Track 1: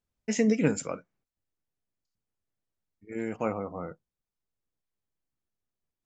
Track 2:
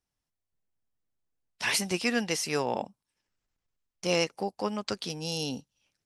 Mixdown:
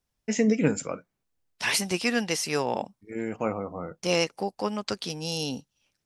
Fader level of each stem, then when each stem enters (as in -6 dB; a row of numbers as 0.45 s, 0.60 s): +1.5 dB, +2.0 dB; 0.00 s, 0.00 s